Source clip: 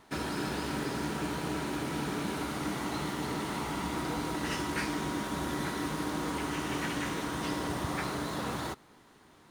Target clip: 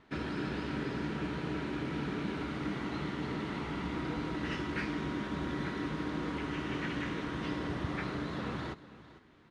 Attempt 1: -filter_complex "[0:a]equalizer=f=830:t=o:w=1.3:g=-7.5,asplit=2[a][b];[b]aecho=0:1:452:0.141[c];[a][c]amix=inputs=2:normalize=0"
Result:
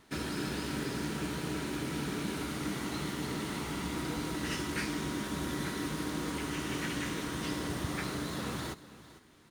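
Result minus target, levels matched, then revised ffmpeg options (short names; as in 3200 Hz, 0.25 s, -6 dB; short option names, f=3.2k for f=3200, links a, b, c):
4000 Hz band +4.5 dB
-filter_complex "[0:a]lowpass=2.9k,equalizer=f=830:t=o:w=1.3:g=-7.5,asplit=2[a][b];[b]aecho=0:1:452:0.141[c];[a][c]amix=inputs=2:normalize=0"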